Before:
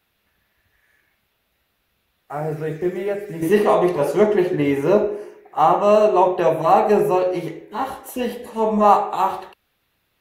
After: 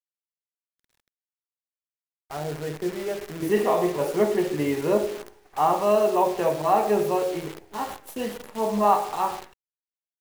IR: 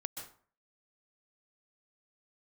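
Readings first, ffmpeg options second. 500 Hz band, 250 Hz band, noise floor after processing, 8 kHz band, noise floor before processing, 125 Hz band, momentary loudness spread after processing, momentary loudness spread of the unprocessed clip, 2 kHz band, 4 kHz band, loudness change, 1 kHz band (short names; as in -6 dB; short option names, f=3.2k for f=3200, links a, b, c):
-6.0 dB, -6.0 dB, under -85 dBFS, n/a, -69 dBFS, -6.0 dB, 13 LU, 13 LU, -5.0 dB, -2.0 dB, -6.0 dB, -6.0 dB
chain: -af "aresample=32000,aresample=44100,acrusher=bits=6:dc=4:mix=0:aa=0.000001,volume=-6dB"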